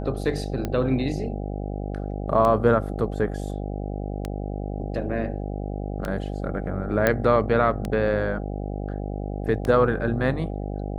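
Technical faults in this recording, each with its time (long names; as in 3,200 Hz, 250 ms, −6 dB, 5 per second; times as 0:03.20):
mains buzz 50 Hz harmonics 16 −30 dBFS
scratch tick 33 1/3 rpm −14 dBFS
0:07.07: click −7 dBFS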